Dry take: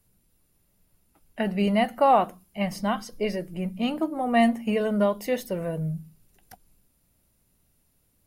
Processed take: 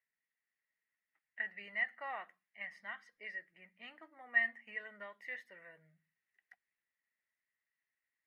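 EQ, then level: band-pass filter 1.9 kHz, Q 14; +3.0 dB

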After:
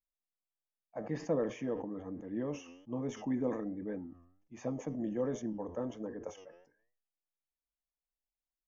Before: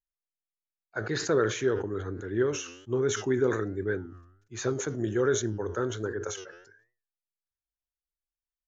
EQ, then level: boxcar filter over 11 samples; distance through air 68 m; static phaser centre 390 Hz, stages 6; 0.0 dB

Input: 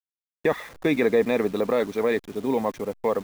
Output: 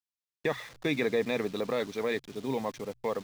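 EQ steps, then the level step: peaking EQ 130 Hz +10 dB 0.39 oct; peaking EQ 4.4 kHz +9 dB 2 oct; hum notches 60/120 Hz; -8.5 dB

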